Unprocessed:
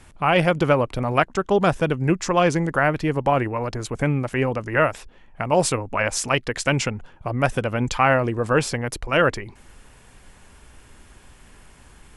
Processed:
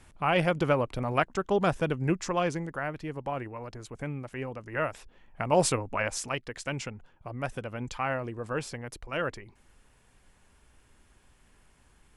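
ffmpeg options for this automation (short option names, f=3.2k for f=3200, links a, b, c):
-af "volume=3dB,afade=t=out:st=2.11:d=0.64:silence=0.446684,afade=t=in:st=4.63:d=1.02:silence=0.316228,afade=t=out:st=5.65:d=0.76:silence=0.354813"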